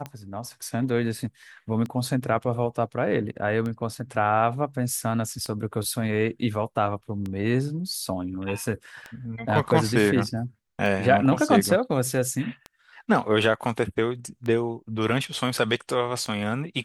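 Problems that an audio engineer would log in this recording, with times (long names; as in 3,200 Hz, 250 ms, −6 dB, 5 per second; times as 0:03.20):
scratch tick 33 1/3 rpm −20 dBFS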